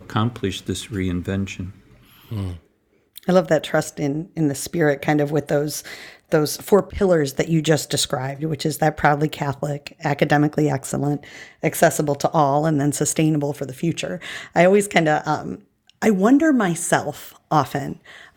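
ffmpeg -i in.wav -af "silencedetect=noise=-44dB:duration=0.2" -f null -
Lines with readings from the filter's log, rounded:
silence_start: 2.59
silence_end: 3.16 | silence_duration: 0.57
silence_start: 15.61
silence_end: 15.90 | silence_duration: 0.28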